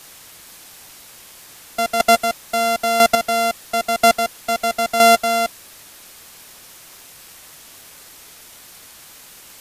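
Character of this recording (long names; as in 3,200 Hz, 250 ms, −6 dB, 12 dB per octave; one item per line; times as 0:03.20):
a buzz of ramps at a fixed pitch in blocks of 64 samples
chopped level 1 Hz, depth 60%, duty 15%
a quantiser's noise floor 8 bits, dither triangular
MP3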